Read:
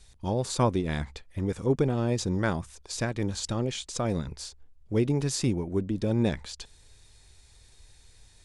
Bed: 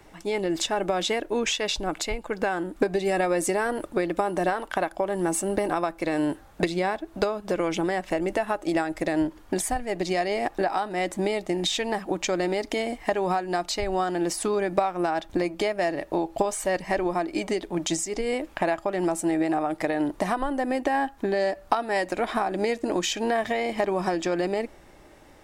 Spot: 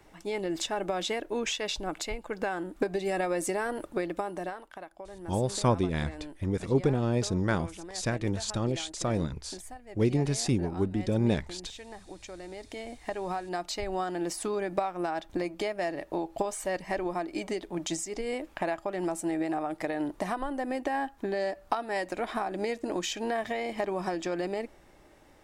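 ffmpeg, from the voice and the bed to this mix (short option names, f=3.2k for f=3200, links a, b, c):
-filter_complex "[0:a]adelay=5050,volume=-0.5dB[a];[1:a]volume=6.5dB,afade=t=out:st=3.99:d=0.73:silence=0.237137,afade=t=in:st=12.43:d=1.3:silence=0.251189[b];[a][b]amix=inputs=2:normalize=0"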